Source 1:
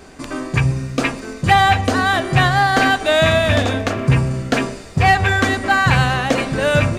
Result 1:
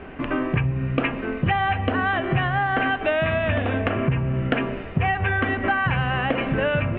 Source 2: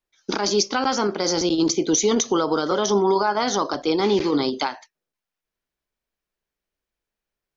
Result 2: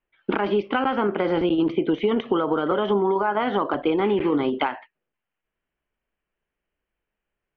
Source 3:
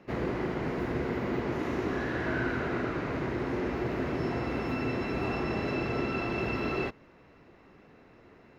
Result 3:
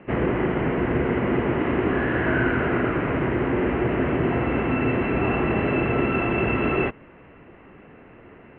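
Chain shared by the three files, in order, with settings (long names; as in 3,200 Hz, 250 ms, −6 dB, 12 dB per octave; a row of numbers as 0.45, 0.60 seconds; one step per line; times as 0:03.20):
Chebyshev low-pass filter 3,000 Hz, order 5
downward compressor 10 to 1, threshold −22 dBFS
loudness normalisation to −23 LKFS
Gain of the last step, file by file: +3.5, +4.5, +9.0 decibels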